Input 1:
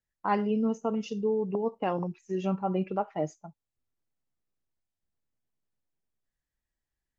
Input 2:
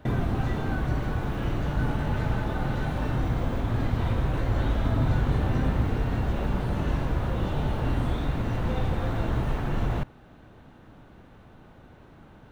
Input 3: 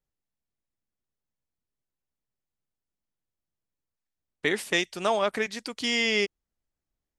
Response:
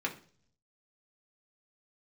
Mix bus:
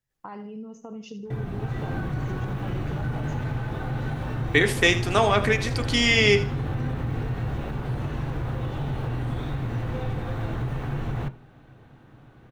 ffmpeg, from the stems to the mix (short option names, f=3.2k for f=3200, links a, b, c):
-filter_complex "[0:a]alimiter=level_in=2.5dB:limit=-24dB:level=0:latency=1:release=34,volume=-2.5dB,acompressor=threshold=-39dB:ratio=6,volume=2.5dB,asplit=2[a][b];[b]volume=-12.5dB[c];[1:a]dynaudnorm=f=170:g=5:m=6.5dB,adelay=1250,volume=-11dB,asplit=2[d][e];[e]volume=-9.5dB[f];[2:a]adelay=100,volume=0.5dB,asplit=3[g][h][i];[h]volume=-4dB[j];[i]volume=-9.5dB[k];[a][d]amix=inputs=2:normalize=0,equalizer=f=130:w=4.2:g=12,alimiter=limit=-21.5dB:level=0:latency=1:release=59,volume=0dB[l];[3:a]atrim=start_sample=2205[m];[f][j]amix=inputs=2:normalize=0[n];[n][m]afir=irnorm=-1:irlink=0[o];[c][k]amix=inputs=2:normalize=0,aecho=0:1:79|158|237|316:1|0.3|0.09|0.027[p];[g][l][o][p]amix=inputs=4:normalize=0"